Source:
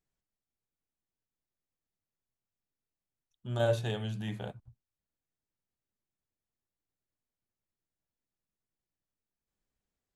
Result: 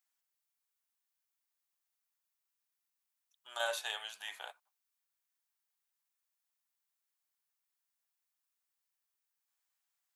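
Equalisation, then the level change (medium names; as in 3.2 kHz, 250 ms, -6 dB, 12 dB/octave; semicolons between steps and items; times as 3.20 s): high-pass 850 Hz 24 dB/octave; treble shelf 9 kHz +8.5 dB; +3.0 dB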